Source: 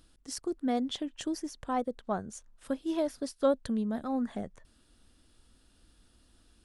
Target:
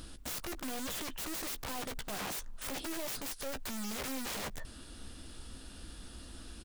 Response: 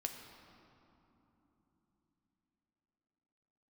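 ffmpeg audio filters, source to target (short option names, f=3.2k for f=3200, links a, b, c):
-filter_complex "[0:a]aeval=exprs='(tanh(79.4*val(0)+0.2)-tanh(0.2))/79.4':c=same,aeval=exprs='(mod(282*val(0)+1,2)-1)/282':c=same,asplit=2[a][b];[b]adelay=15,volume=-11.5dB[c];[a][c]amix=inputs=2:normalize=0,volume=15dB"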